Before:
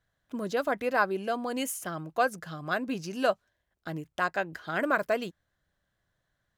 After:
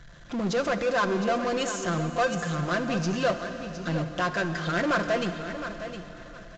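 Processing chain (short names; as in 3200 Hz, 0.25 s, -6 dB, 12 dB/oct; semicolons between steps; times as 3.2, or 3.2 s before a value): low shelf 120 Hz +9 dB; notch 810 Hz, Q 12; comb 5.8 ms, depth 65%; power-law curve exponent 0.5; feedback echo 0.712 s, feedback 21%, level -10.5 dB; on a send at -9 dB: reverb RT60 3.5 s, pre-delay 23 ms; on the sum: downsampling 16000 Hz; gain -6.5 dB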